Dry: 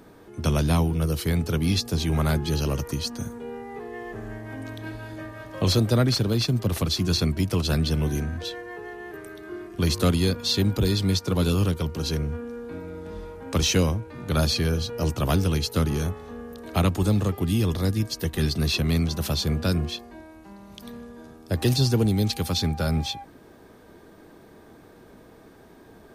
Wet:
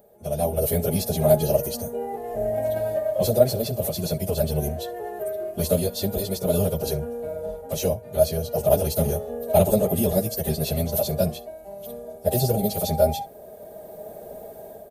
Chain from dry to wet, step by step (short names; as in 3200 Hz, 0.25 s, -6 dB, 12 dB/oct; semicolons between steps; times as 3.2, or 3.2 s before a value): comb 4.9 ms, depth 43%; echo 0.112 s -21.5 dB; plain phase-vocoder stretch 0.57×; tilt +3 dB/oct; AGC gain up to 16 dB; EQ curve 110 Hz 0 dB, 320 Hz -12 dB, 630 Hz +8 dB, 1100 Hz -21 dB, 5400 Hz -22 dB, 13000 Hz -7 dB; gain +2 dB